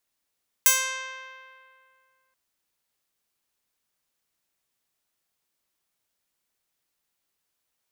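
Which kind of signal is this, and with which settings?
Karplus-Strong string C5, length 1.68 s, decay 2.29 s, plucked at 0.12, bright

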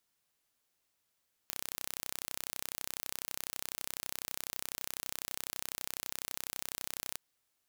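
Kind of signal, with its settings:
impulse train 32 per second, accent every 0, −10.5 dBFS 5.67 s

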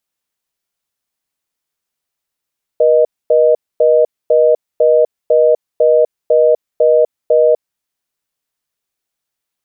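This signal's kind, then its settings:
call progress tone reorder tone, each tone −9.5 dBFS 5.00 s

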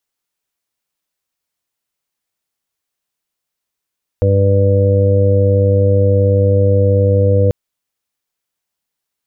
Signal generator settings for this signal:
steady harmonic partials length 3.29 s, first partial 98.6 Hz, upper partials −12.5/−14/−19.5/−3/−13 dB, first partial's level −10.5 dB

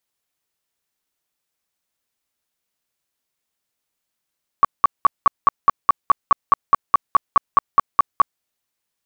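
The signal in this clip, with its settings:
tone bursts 1,130 Hz, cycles 19, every 0.21 s, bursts 18, −7 dBFS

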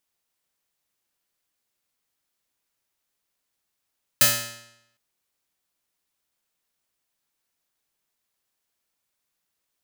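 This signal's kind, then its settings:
Karplus-Strong string A#2, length 0.76 s, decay 0.83 s, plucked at 0.3, bright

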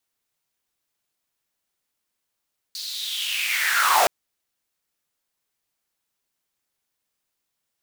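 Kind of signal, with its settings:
filter sweep on noise pink, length 1.32 s highpass, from 4,500 Hz, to 610 Hz, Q 6.2, linear, gain ramp +16 dB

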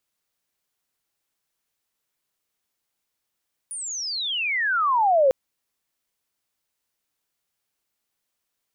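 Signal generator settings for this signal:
glide logarithmic 9,800 Hz → 510 Hz −30 dBFS → −13.5 dBFS 1.60 s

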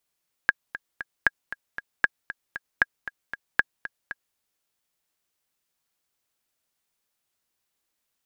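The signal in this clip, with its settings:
click track 232 BPM, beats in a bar 3, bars 5, 1,640 Hz, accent 14.5 dB −4.5 dBFS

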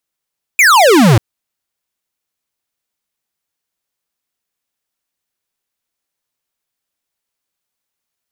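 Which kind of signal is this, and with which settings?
single falling chirp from 2,500 Hz, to 100 Hz, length 0.59 s square, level −7 dB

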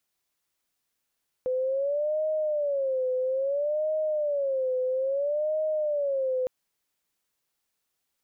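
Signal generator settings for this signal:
siren wail 509–623 Hz 0.6 per second sine −24 dBFS 5.01 s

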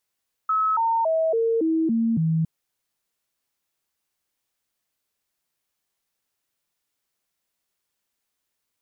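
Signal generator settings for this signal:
stepped sweep 1,290 Hz down, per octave 2, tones 7, 0.28 s, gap 0.00 s −18.5 dBFS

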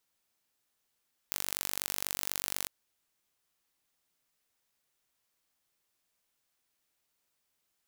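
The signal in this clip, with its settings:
impulse train 48.2 per second, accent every 2, −4.5 dBFS 1.35 s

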